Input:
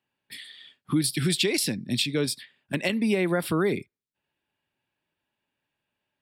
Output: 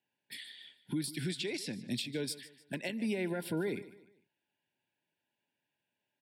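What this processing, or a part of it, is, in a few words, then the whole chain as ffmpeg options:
PA system with an anti-feedback notch: -filter_complex "[0:a]highpass=120,asuperstop=centerf=1200:order=20:qfactor=3.4,alimiter=limit=-22dB:level=0:latency=1:release=423,asettb=1/sr,asplit=3[a][b][c];[a]atrim=end=1.244[d];[b]atrim=start=1.24:end=1.83,asetpts=PTS-STARTPTS,afade=t=in:d=0.004:c=qsin,afade=t=out:st=0.586:d=0.004:c=qsin,lowpass=8.3k[e];[c]atrim=start=1.826[f];[d][e]acrossfade=d=0.004:c1=hsin:c2=qsin[g];[g][f]acrossfade=d=0.004:c1=qsin:c2=hsin,aecho=1:1:150|300|450:0.141|0.0523|0.0193,volume=-4.5dB"

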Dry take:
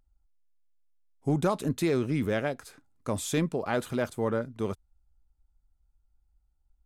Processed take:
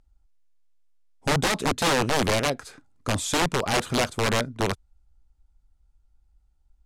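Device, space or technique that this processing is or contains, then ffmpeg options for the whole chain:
overflowing digital effects unit: -af "aeval=exprs='(mod(14.1*val(0)+1,2)-1)/14.1':c=same,lowpass=9.1k,volume=6.5dB"

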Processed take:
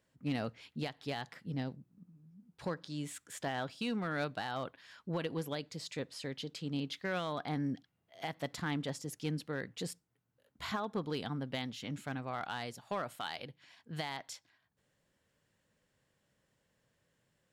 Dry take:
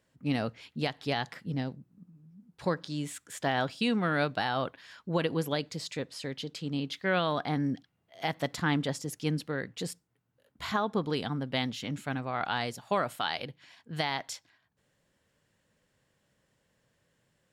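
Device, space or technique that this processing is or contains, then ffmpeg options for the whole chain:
limiter into clipper: -af "alimiter=limit=-21.5dB:level=0:latency=1:release=479,asoftclip=type=hard:threshold=-24dB,volume=-4dB"

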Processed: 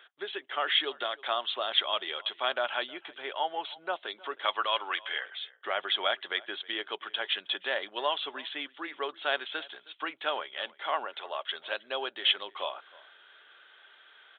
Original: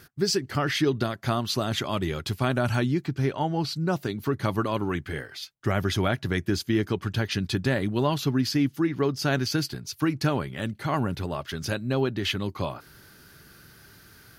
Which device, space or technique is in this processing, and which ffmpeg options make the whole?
musical greeting card: -filter_complex "[0:a]asettb=1/sr,asplit=3[a][b][c];[a]atrim=end=4.454[d];[b]atrim=start=4.45:end=5.25,asetpts=PTS-STARTPTS,afade=t=in:d=0.004:c=qsin,afade=t=out:st=0.796:d=0.004:c=qsin,tiltshelf=f=690:g=-6[e];[c]atrim=start=5.246[f];[d][e]acrossfade=d=0.004:c1=hsin:c2=qsin[g];[g][f]acrossfade=d=0.004:c1=qsin:c2=hsin,asettb=1/sr,asplit=3[h][i][j];[h]atrim=end=11.054[k];[i]atrim=start=11.05:end=11.46,asetpts=PTS-STARTPTS,afade=t=in:d=0.004:c=qsin,afade=t=out:st=0.406:d=0.004:c=qsin,highpass=340[l];[j]atrim=start=11.456[m];[k][l]acrossfade=d=0.004:c1=hsin:c2=qsin[n];[n][m]acrossfade=d=0.004:c1=qsin:c2=hsin,aresample=8000,aresample=44100,highpass=f=550:w=0.5412,highpass=f=550:w=1.3066,equalizer=f=3.3k:t=o:w=0.29:g=10,asplit=2[o][p];[p]adelay=314.9,volume=-22dB,highshelf=f=4k:g=-7.08[q];[o][q]amix=inputs=2:normalize=0,volume=-1.5dB"

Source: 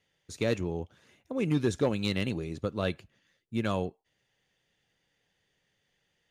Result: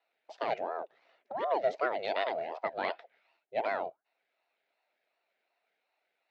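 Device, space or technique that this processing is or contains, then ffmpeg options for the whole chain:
voice changer toy: -filter_complex "[0:a]asettb=1/sr,asplit=3[a][b][c];[a]atrim=end=2.154[d];[b]atrim=start=2.15:end=3.59,asetpts=PTS-STARTPTS,afade=t=in:d=0.004:c=qsin,afade=t=out:st=1.436:d=0.004:c=qsin,equalizer=f=1.6k:t=o:w=2.8:g=5.5[e];[c]atrim=start=3.586[f];[d][e]acrossfade=d=0.004:c1=hsin:c2=qsin[g];[g][f]acrossfade=d=0.004:c1=qsin:c2=hsin,aeval=exprs='val(0)*sin(2*PI*580*n/s+580*0.55/2.7*sin(2*PI*2.7*n/s))':c=same,highpass=490,equalizer=f=660:t=q:w=4:g=9,equalizer=f=1.1k:t=q:w=4:g=-9,equalizer=f=2k:t=q:w=4:g=3,equalizer=f=3.2k:t=q:w=4:g=-8,lowpass=f=3.9k:w=0.5412,lowpass=f=3.9k:w=1.3066"

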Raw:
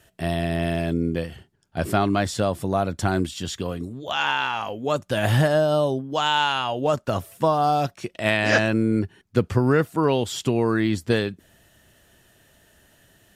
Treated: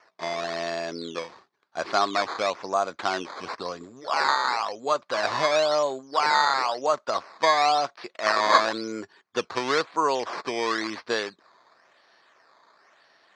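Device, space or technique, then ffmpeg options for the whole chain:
circuit-bent sampling toy: -filter_complex "[0:a]asettb=1/sr,asplit=3[a][b][c];[a]atrim=end=3.394[d];[b]atrim=start=3.39:end=4.93,asetpts=PTS-STARTPTS,afade=t=in:d=0.004:c=qsin,afade=t=out:st=1.536:d=0.004:c=qsin,lowshelf=f=150:g=10.5[e];[c]atrim=start=4.926[f];[d][e]acrossfade=d=0.004:c1=hsin:c2=qsin[g];[g][f]acrossfade=d=0.004:c1=qsin:c2=hsin,acrusher=samples=11:mix=1:aa=0.000001:lfo=1:lforange=11:lforate=0.97,highpass=560,equalizer=f=1.1k:t=q:w=4:g=7,equalizer=f=2.9k:t=q:w=4:g=-6,equalizer=f=4.4k:t=q:w=4:g=4,lowpass=f=5.7k:w=0.5412,lowpass=f=5.7k:w=1.3066"

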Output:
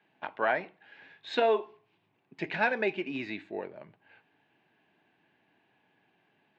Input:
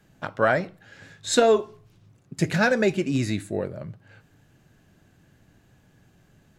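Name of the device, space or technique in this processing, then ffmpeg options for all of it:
phone earpiece: -af "highpass=400,equalizer=f=540:t=q:w=4:g=-8,equalizer=f=890:t=q:w=4:g=5,equalizer=f=1.3k:t=q:w=4:g=-8,equalizer=f=2.5k:t=q:w=4:g=4,lowpass=f=3.3k:w=0.5412,lowpass=f=3.3k:w=1.3066,volume=-3.5dB"

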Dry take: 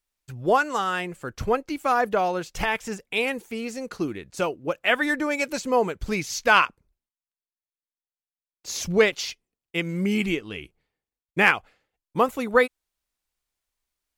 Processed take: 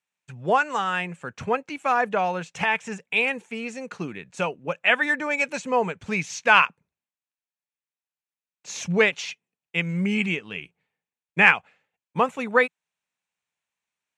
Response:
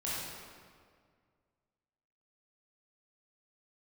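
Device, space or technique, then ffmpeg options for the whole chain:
car door speaker: -af "highpass=97,highpass=98,equalizer=f=170:t=q:w=4:g=6,equalizer=f=330:t=q:w=4:g=-8,equalizer=f=890:t=q:w=4:g=4,equalizer=f=1.7k:t=q:w=4:g=4,equalizer=f=2.5k:t=q:w=4:g=7,equalizer=f=4.8k:t=q:w=4:g=-8,lowpass=f=8.4k:w=0.5412,lowpass=f=8.4k:w=1.3066,volume=-1.5dB"

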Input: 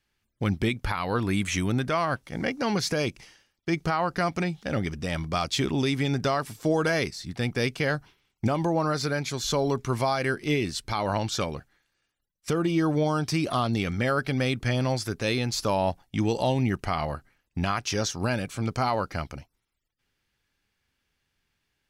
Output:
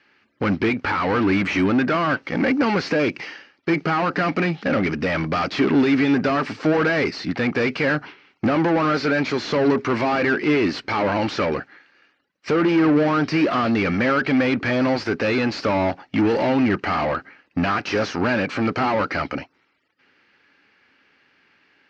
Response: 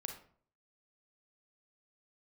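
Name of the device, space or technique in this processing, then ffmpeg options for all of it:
overdrive pedal into a guitar cabinet: -filter_complex "[0:a]asplit=2[a][b];[b]highpass=f=720:p=1,volume=28dB,asoftclip=type=tanh:threshold=-14.5dB[c];[a][c]amix=inputs=2:normalize=0,lowpass=f=2.2k:p=1,volume=-6dB,highpass=100,equalizer=f=130:t=q:w=4:g=-6,equalizer=f=280:t=q:w=4:g=6,equalizer=f=700:t=q:w=4:g=-4,equalizer=f=1k:t=q:w=4:g=-4,equalizer=f=3.5k:t=q:w=4:g=-9,lowpass=f=4.5k:w=0.5412,lowpass=f=4.5k:w=1.3066,volume=2.5dB"

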